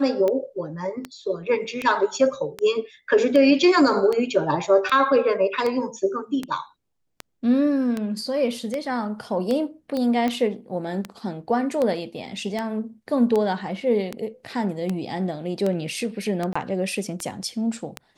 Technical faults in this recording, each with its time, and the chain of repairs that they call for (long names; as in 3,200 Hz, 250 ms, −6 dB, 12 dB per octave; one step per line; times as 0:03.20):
scratch tick 78 rpm −13 dBFS
0:09.97: click −16 dBFS
0:16.53–0:16.55: drop-out 25 ms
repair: click removal
repair the gap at 0:16.53, 25 ms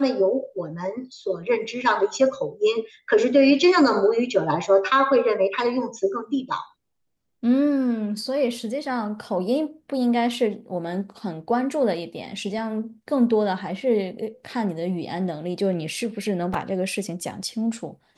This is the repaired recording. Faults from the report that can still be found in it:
none of them is left